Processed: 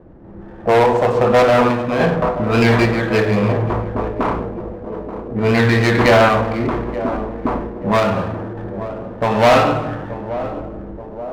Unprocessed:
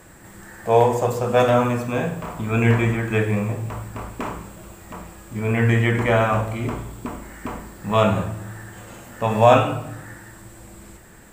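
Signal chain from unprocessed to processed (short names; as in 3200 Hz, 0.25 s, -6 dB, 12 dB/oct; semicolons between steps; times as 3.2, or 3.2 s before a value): LPF 2800 Hz 12 dB/oct; bell 110 Hz -7 dB 1.9 oct; low-pass opened by the level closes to 410 Hz, open at -17.5 dBFS; in parallel at +3 dB: compressor, threshold -27 dBFS, peak gain reduction 17 dB; on the sum: hard clip -14.5 dBFS, distortion -9 dB; random-step tremolo; on a send: narrowing echo 0.88 s, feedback 70%, band-pass 400 Hz, level -10.5 dB; on the sum: running maximum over 5 samples; gain +8 dB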